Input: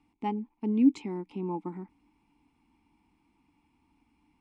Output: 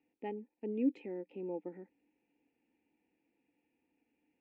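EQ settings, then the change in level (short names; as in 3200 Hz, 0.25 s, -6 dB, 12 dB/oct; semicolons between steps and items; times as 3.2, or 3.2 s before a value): vowel filter e; high shelf 2300 Hz -12 dB; +10.0 dB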